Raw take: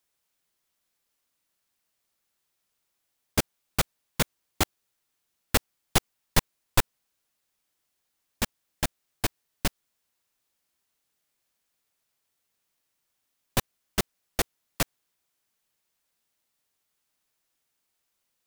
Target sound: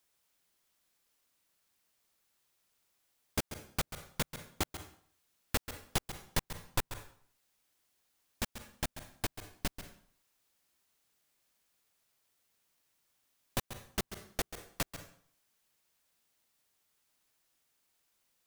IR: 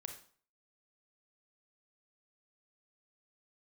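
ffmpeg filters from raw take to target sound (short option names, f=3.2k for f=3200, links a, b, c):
-filter_complex "[0:a]asplit=2[a][b];[1:a]atrim=start_sample=2205,adelay=136[c];[b][c]afir=irnorm=-1:irlink=0,volume=-9dB[d];[a][d]amix=inputs=2:normalize=0,acompressor=threshold=-51dB:ratio=1.5,volume=1.5dB"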